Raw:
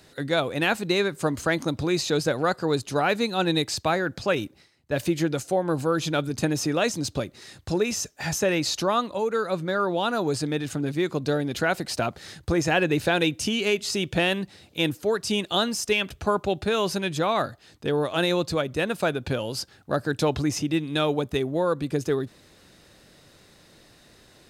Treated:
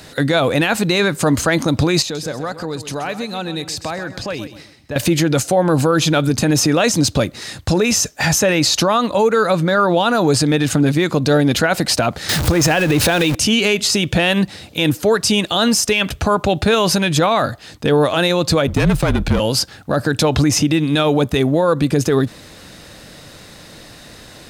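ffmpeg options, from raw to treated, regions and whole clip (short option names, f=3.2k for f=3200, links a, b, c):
-filter_complex "[0:a]asettb=1/sr,asplit=3[a][b][c];[a]atrim=end=2.024[d];[b]atrim=start=2.02:end=4.96,asetpts=PTS-STARTPTS,afade=t=in:d=0.004:c=qsin,afade=t=out:st=2.936:d=0.004:c=qsin,bandreject=f=1.4k:w=20,acompressor=threshold=-41dB:ratio=3:attack=3.2:release=140:knee=1:detection=peak,aecho=1:1:129|258|387:0.251|0.0854|0.029,atrim=end_sample=129654[e];[c]atrim=start=4.956[f];[d][e]acrossfade=d=0.004:c1=hsin:c2=qsin[g];[g][f]acrossfade=d=0.004:c1=qsin:c2=hsin,asettb=1/sr,asplit=3[h][i][j];[h]atrim=end=12.294[k];[i]atrim=start=12.29:end=13.35,asetpts=PTS-STARTPTS,afade=t=in:d=0.004:c=qsin,afade=t=out:st=1.056:d=0.004:c=qsin,aeval=exprs='val(0)+0.5*0.0376*sgn(val(0))':c=same,acompressor=threshold=-24dB:ratio=6:attack=3.2:release=140:knee=1:detection=peak[l];[j]atrim=start=13.346[m];[k][l]acrossfade=d=0.004:c1=hsin:c2=qsin[n];[n][m]acrossfade=d=0.004:c1=qsin:c2=hsin,asettb=1/sr,asplit=3[o][p][q];[o]atrim=end=18.674[r];[p]atrim=start=18.67:end=19.4,asetpts=PTS-STARTPTS,afade=t=in:d=0.004:c=qsin,afade=t=out:st=0.726:d=0.004:c=qsin,aeval=exprs='if(lt(val(0),0),0.251*val(0),val(0))':c=same,equalizer=f=200:t=o:w=1.1:g=10,afreqshift=-42[s];[q]atrim=start=19.396[t];[r][s]acrossfade=d=0.004:c1=hsin:c2=qsin[u];[u][t]acrossfade=d=0.004:c1=qsin:c2=hsin,equalizer=f=380:t=o:w=0.2:g=-7,alimiter=level_in=20.5dB:limit=-1dB:release=50:level=0:latency=1,volume=-5.5dB"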